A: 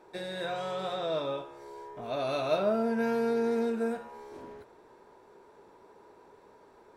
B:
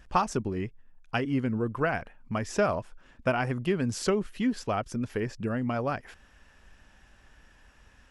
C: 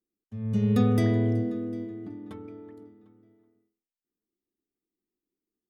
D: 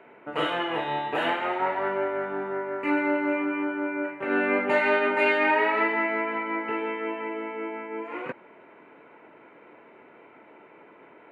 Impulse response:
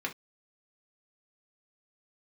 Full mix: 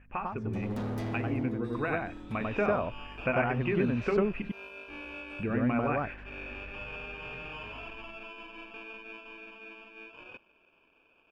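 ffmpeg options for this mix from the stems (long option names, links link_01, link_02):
-filter_complex "[0:a]acompressor=threshold=-34dB:ratio=3,highpass=940,adelay=1500,volume=-14.5dB[link_01];[1:a]aeval=exprs='val(0)+0.00282*(sin(2*PI*50*n/s)+sin(2*PI*2*50*n/s)/2+sin(2*PI*3*50*n/s)/3+sin(2*PI*4*50*n/s)/4+sin(2*PI*5*50*n/s)/5)':channel_layout=same,dynaudnorm=framelen=530:gausssize=7:maxgain=11.5dB,lowpass=1800,volume=-8.5dB,asplit=3[link_02][link_03][link_04];[link_02]atrim=end=4.42,asetpts=PTS-STARTPTS,afade=type=out:start_time=4.416:duration=0.004:curve=hsin[link_05];[link_03]atrim=start=4.42:end=5.39,asetpts=PTS-STARTPTS,volume=0[link_06];[link_04]atrim=start=5.39,asetpts=PTS-STARTPTS,afade=type=in:duration=0.004:curve=hsin[link_07];[link_05][link_06][link_07]concat=n=3:v=0:a=1,asplit=3[link_08][link_09][link_10];[link_09]volume=-13dB[link_11];[link_10]volume=-4dB[link_12];[2:a]volume=26.5dB,asoftclip=hard,volume=-26.5dB,volume=-5.5dB[link_13];[3:a]acrusher=samples=22:mix=1:aa=0.000001,asoftclip=type=hard:threshold=-23dB,adelay=2050,volume=-19.5dB[link_14];[link_08][link_14]amix=inputs=2:normalize=0,lowpass=frequency=2500:width_type=q:width=12,acompressor=threshold=-38dB:ratio=2,volume=0dB[link_15];[4:a]atrim=start_sample=2205[link_16];[link_11][link_16]afir=irnorm=-1:irlink=0[link_17];[link_12]aecho=0:1:96:1[link_18];[link_01][link_13][link_15][link_17][link_18]amix=inputs=5:normalize=0"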